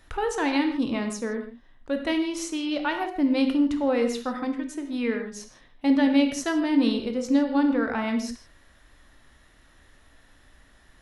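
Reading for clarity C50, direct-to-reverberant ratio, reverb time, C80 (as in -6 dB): 7.5 dB, 5.0 dB, no single decay rate, 9.5 dB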